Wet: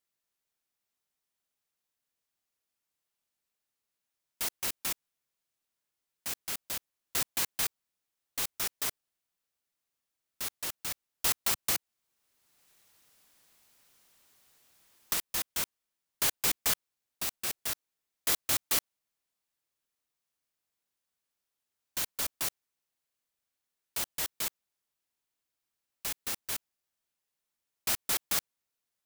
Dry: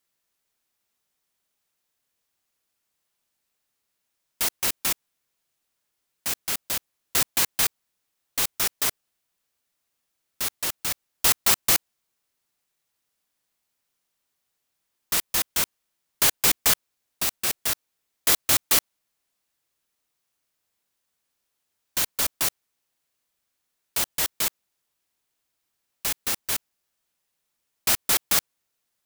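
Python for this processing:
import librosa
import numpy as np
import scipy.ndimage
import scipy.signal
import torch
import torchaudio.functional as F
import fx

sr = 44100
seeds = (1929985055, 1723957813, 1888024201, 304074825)

y = fx.band_squash(x, sr, depth_pct=70, at=(11.44, 15.14))
y = y * 10.0 ** (-8.5 / 20.0)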